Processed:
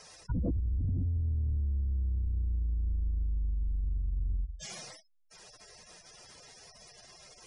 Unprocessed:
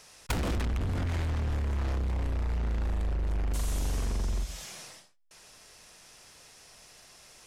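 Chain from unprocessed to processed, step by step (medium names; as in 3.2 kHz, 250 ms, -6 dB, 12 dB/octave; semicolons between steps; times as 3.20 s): spectral gate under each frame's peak -10 dB strong; bass shelf 300 Hz +7.5 dB; in parallel at -8 dB: saturation -27 dBFS, distortion -12 dB; on the sum: bass shelf 130 Hz -11.5 dB; band-stop 2.6 kHz, Q 13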